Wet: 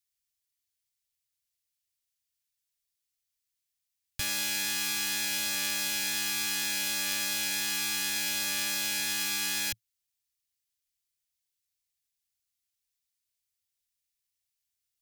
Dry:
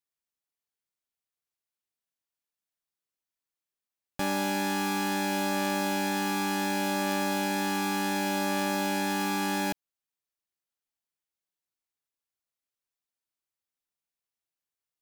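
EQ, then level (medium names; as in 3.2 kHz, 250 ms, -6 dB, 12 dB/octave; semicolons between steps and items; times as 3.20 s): FFT filter 110 Hz 0 dB, 190 Hz -23 dB, 790 Hz -24 dB, 2 kHz -5 dB, 5.1 kHz +1 dB; +6.5 dB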